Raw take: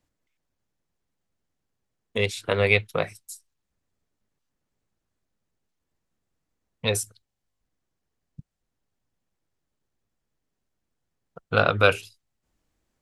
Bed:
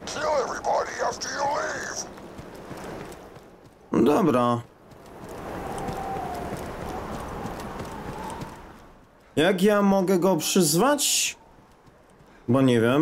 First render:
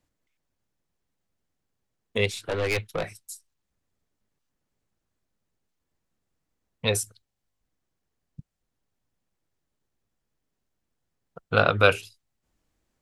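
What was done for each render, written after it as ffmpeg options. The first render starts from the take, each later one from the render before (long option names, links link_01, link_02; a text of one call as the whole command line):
ffmpeg -i in.wav -filter_complex "[0:a]asettb=1/sr,asplit=3[link_01][link_02][link_03];[link_01]atrim=end=2.314[link_04];[link_02]atrim=start=2.31:end=3.06,asetpts=PTS-STARTPTS,afade=type=in:duration=0.004:curve=qsin,afade=type=out:start_time=0.746:duration=0.004:curve=qsin,aeval=exprs='(tanh(11.2*val(0)+0.3)-tanh(0.3))/11.2':channel_layout=same[link_05];[link_03]atrim=start=3.056[link_06];[link_04][link_05]acrossfade=duration=0.004:curve1=hsin:curve2=qsin[link_07];[link_07][link_06]acrossfade=duration=0.004:curve1=qsin:curve2=hsin" out.wav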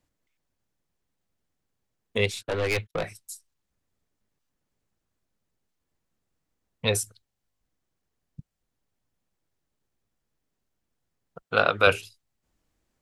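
ffmpeg -i in.wav -filter_complex "[0:a]asettb=1/sr,asplit=3[link_01][link_02][link_03];[link_01]atrim=end=2.194[link_04];[link_02]atrim=start=2.19:end=3.07,asetpts=PTS-STARTPTS,afade=type=in:duration=0.004:curve=qsin,afade=type=out:start_time=0.876:duration=0.004:curve=qsin,agate=range=-35dB:threshold=-45dB:ratio=16:release=100:detection=peak[link_05];[link_03]atrim=start=3.066[link_06];[link_04][link_05]acrossfade=duration=0.004:curve1=hsin:curve2=qsin[link_07];[link_07][link_06]acrossfade=duration=0.004:curve1=qsin:curve2=hsin,asettb=1/sr,asplit=3[link_08][link_09][link_10];[link_08]atrim=end=11.424[link_11];[link_09]atrim=start=11.42:end=11.87,asetpts=PTS-STARTPTS,afade=type=in:duration=0.004:curve=qsin,afade=type=out:start_time=0.446:duration=0.004:curve=qsin,highpass=frequency=360:poles=1[link_12];[link_10]atrim=start=11.866[link_13];[link_11][link_12]acrossfade=duration=0.004:curve1=hsin:curve2=qsin[link_14];[link_14][link_13]acrossfade=duration=0.004:curve1=qsin:curve2=hsin" out.wav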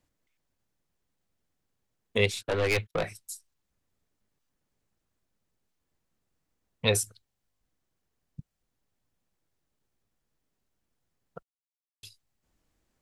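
ffmpeg -i in.wav -filter_complex "[0:a]asplit=3[link_01][link_02][link_03];[link_01]atrim=end=11.43,asetpts=PTS-STARTPTS,afade=type=out:start_time=11.426:duration=0.004:curve=hsin[link_04];[link_02]atrim=start=11.43:end=12.03,asetpts=PTS-STARTPTS,volume=0[link_05];[link_03]atrim=start=12.03,asetpts=PTS-STARTPTS,afade=type=in:duration=0.004:curve=hsin[link_06];[link_04][link_05][link_06]concat=n=3:v=0:a=1" out.wav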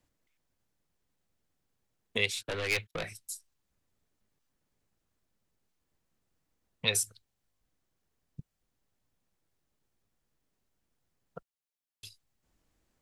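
ffmpeg -i in.wav -filter_complex "[0:a]acrossover=split=430|1600[link_01][link_02][link_03];[link_01]acompressor=threshold=-38dB:ratio=6[link_04];[link_02]alimiter=level_in=9dB:limit=-24dB:level=0:latency=1:release=327,volume=-9dB[link_05];[link_04][link_05][link_03]amix=inputs=3:normalize=0" out.wav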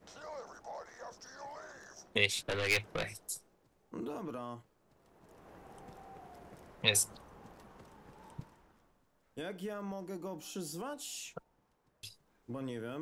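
ffmpeg -i in.wav -i bed.wav -filter_complex "[1:a]volume=-21.5dB[link_01];[0:a][link_01]amix=inputs=2:normalize=0" out.wav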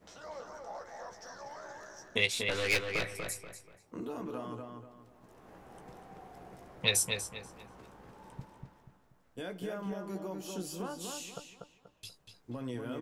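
ffmpeg -i in.wav -filter_complex "[0:a]asplit=2[link_01][link_02];[link_02]adelay=16,volume=-8dB[link_03];[link_01][link_03]amix=inputs=2:normalize=0,asplit=2[link_04][link_05];[link_05]adelay=241,lowpass=frequency=3300:poles=1,volume=-4dB,asplit=2[link_06][link_07];[link_07]adelay=241,lowpass=frequency=3300:poles=1,volume=0.35,asplit=2[link_08][link_09];[link_09]adelay=241,lowpass=frequency=3300:poles=1,volume=0.35,asplit=2[link_10][link_11];[link_11]adelay=241,lowpass=frequency=3300:poles=1,volume=0.35[link_12];[link_04][link_06][link_08][link_10][link_12]amix=inputs=5:normalize=0" out.wav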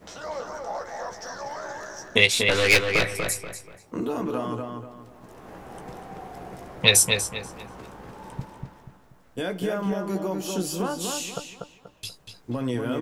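ffmpeg -i in.wav -af "volume=11.5dB,alimiter=limit=-1dB:level=0:latency=1" out.wav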